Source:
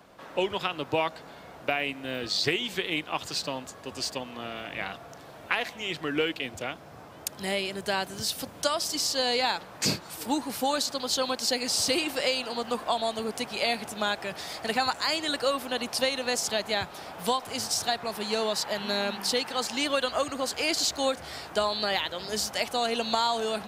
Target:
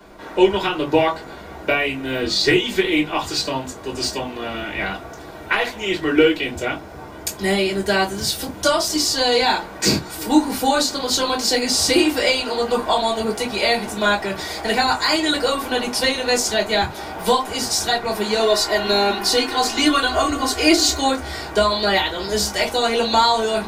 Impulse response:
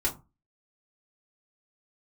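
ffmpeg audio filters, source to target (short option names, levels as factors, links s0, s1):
-filter_complex "[0:a]asettb=1/sr,asplit=3[s0][s1][s2];[s0]atrim=end=18.394[s3];[s1]atrim=start=18.39:end=20.97,asetpts=PTS-STARTPTS,afade=t=in:d=0.004:c=qsin,afade=t=out:st=2.576:d=0.004:c=qsin,aecho=1:1:2.8:0.65,atrim=end_sample=113778[s4];[s2]atrim=start=20.966[s5];[s3][s4]acrossfade=d=0.004:c1=hsin:c2=qsin[s6];[s6][s5]acrossfade=d=0.004:c1=qsin:c2=hsin[s7];[1:a]atrim=start_sample=2205,atrim=end_sample=4410[s8];[s7][s8]afir=irnorm=-1:irlink=0,volume=1.33"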